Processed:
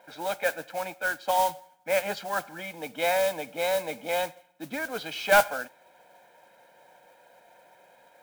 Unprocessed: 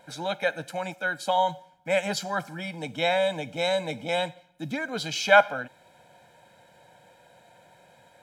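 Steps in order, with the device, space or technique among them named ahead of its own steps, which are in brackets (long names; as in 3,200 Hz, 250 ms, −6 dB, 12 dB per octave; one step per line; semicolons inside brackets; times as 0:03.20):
carbon microphone (band-pass filter 320–2,800 Hz; soft clipping −10.5 dBFS, distortion −16 dB; noise that follows the level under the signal 13 dB)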